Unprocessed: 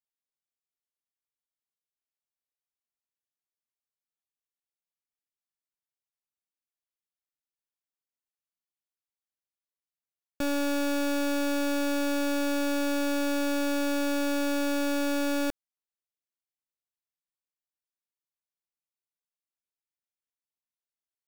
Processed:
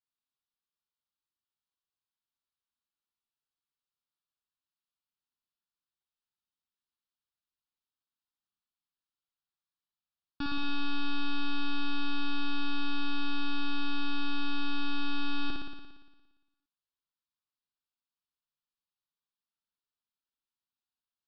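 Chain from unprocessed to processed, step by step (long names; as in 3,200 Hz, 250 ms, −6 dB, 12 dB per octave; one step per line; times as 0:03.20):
Chebyshev low-pass filter 5,400 Hz, order 10
phaser with its sweep stopped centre 2,100 Hz, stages 6
on a send: flutter between parallel walls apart 9.9 metres, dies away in 1.2 s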